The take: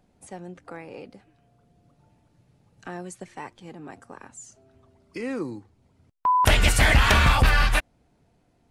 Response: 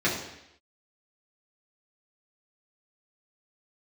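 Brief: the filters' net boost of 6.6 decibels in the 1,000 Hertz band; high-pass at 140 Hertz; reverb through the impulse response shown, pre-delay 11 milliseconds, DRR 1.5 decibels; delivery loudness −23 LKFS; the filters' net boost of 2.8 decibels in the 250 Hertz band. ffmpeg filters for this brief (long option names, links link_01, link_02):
-filter_complex "[0:a]highpass=140,equalizer=frequency=250:width_type=o:gain=4,equalizer=frequency=1000:width_type=o:gain=7,asplit=2[link_01][link_02];[1:a]atrim=start_sample=2205,adelay=11[link_03];[link_02][link_03]afir=irnorm=-1:irlink=0,volume=-15dB[link_04];[link_01][link_04]amix=inputs=2:normalize=0,volume=-5.5dB"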